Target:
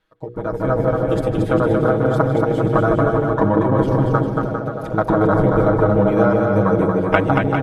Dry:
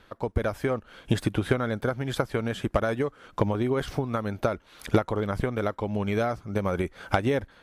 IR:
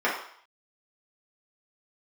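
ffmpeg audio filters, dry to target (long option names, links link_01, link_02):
-filter_complex "[0:a]asplit=2[link_01][link_02];[link_02]adelay=155,lowpass=frequency=2600:poles=1,volume=-5dB,asplit=2[link_03][link_04];[link_04]adelay=155,lowpass=frequency=2600:poles=1,volume=0.55,asplit=2[link_05][link_06];[link_06]adelay=155,lowpass=frequency=2600:poles=1,volume=0.55,asplit=2[link_07][link_08];[link_08]adelay=155,lowpass=frequency=2600:poles=1,volume=0.55,asplit=2[link_09][link_10];[link_10]adelay=155,lowpass=frequency=2600:poles=1,volume=0.55,asplit=2[link_11][link_12];[link_12]adelay=155,lowpass=frequency=2600:poles=1,volume=0.55,asplit=2[link_13][link_14];[link_14]adelay=155,lowpass=frequency=2600:poles=1,volume=0.55[link_15];[link_03][link_05][link_07][link_09][link_11][link_13][link_15]amix=inputs=7:normalize=0[link_16];[link_01][link_16]amix=inputs=2:normalize=0,afwtdn=0.0398,asettb=1/sr,asplit=3[link_17][link_18][link_19];[link_17]atrim=end=4.184[link_20];[link_18]atrim=start=4.18:end=4.98,asetpts=PTS-STARTPTS,afade=type=in:duration=0.004:curve=qsin,afade=type=out:start_time=0.796:duration=0.004:curve=qsin,acompressor=threshold=-34dB:ratio=6[link_21];[link_19]atrim=start=4.976[link_22];[link_20][link_21]acrossfade=duration=0.004:curve1=hsin:curve2=qsin[link_23];[link_23][link_22]acrossfade=duration=0.004:curve1=qsin:curve2=hsin,afftfilt=real='re*lt(hypot(re,im),0.501)':imag='im*lt(hypot(re,im),0.501)':win_size=1024:overlap=0.75,bandreject=frequency=60:width_type=h:width=6,bandreject=frequency=120:width_type=h:width=6,bandreject=frequency=180:width_type=h:width=6,bandreject=frequency=240:width_type=h:width=6,bandreject=frequency=300:width_type=h:width=6,bandreject=frequency=360:width_type=h:width=6,bandreject=frequency=420:width_type=h:width=6,bandreject=frequency=480:width_type=h:width=6,aecho=1:1:6.3:0.87,asplit=2[link_24][link_25];[link_25]aecho=0:1:230|402.5|531.9|628.9|701.7:0.631|0.398|0.251|0.158|0.1[link_26];[link_24][link_26]amix=inputs=2:normalize=0,dynaudnorm=framelen=160:gausssize=9:maxgain=11.5dB"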